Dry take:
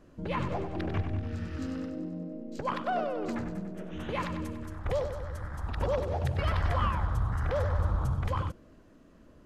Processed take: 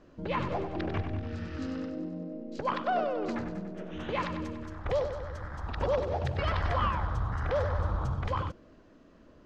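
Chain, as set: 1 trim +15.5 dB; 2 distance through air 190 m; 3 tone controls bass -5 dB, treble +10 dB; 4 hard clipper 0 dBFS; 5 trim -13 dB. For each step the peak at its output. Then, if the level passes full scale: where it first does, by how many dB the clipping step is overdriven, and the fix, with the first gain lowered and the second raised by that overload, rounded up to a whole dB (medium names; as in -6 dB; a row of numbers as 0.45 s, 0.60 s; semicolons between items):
-2.0 dBFS, -2.0 dBFS, -4.5 dBFS, -4.5 dBFS, -17.5 dBFS; nothing clips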